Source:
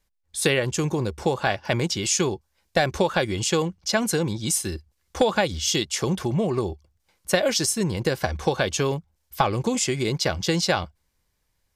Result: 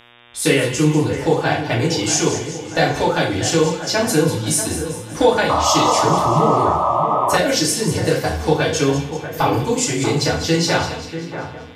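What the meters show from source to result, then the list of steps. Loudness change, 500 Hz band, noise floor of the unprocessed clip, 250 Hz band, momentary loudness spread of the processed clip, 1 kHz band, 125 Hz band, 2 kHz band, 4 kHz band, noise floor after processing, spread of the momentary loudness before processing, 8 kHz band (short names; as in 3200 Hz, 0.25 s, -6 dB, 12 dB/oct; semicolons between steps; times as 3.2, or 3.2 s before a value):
+6.5 dB, +6.5 dB, -73 dBFS, +7.0 dB, 8 LU, +10.5 dB, +6.5 dB, +5.5 dB, +4.5 dB, -34 dBFS, 6 LU, +5.0 dB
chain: FDN reverb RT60 0.54 s, low-frequency decay 0.9×, high-frequency decay 0.8×, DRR -6.5 dB; buzz 120 Hz, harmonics 31, -46 dBFS 0 dB/oct; on a send: split-band echo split 2100 Hz, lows 0.638 s, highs 0.194 s, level -10.5 dB; on the sum: painted sound noise, 5.49–7.38, 550–1300 Hz -15 dBFS; gain -2.5 dB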